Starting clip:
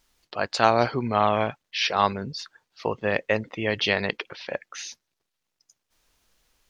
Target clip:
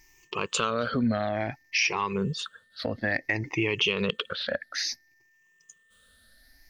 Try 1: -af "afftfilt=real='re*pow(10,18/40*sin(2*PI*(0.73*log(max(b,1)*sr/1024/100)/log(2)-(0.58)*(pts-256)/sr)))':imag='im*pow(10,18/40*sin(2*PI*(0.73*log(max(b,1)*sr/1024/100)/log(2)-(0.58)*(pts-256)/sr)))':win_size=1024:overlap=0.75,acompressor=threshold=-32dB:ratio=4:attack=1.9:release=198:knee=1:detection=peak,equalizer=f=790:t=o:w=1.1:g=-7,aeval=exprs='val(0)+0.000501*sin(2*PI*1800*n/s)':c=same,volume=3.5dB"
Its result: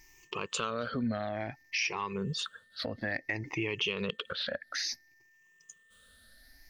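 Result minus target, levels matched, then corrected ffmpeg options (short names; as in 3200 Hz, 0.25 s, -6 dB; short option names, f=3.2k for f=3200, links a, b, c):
compressor: peak gain reduction +7 dB
-af "afftfilt=real='re*pow(10,18/40*sin(2*PI*(0.73*log(max(b,1)*sr/1024/100)/log(2)-(0.58)*(pts-256)/sr)))':imag='im*pow(10,18/40*sin(2*PI*(0.73*log(max(b,1)*sr/1024/100)/log(2)-(0.58)*(pts-256)/sr)))':win_size=1024:overlap=0.75,acompressor=threshold=-23dB:ratio=4:attack=1.9:release=198:knee=1:detection=peak,equalizer=f=790:t=o:w=1.1:g=-7,aeval=exprs='val(0)+0.000501*sin(2*PI*1800*n/s)':c=same,volume=3.5dB"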